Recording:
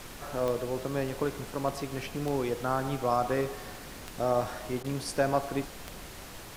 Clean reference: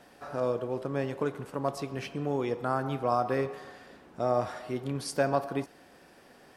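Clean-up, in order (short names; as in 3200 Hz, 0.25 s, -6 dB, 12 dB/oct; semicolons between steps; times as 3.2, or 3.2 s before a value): de-click; interpolate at 4.83, 12 ms; noise print and reduce 12 dB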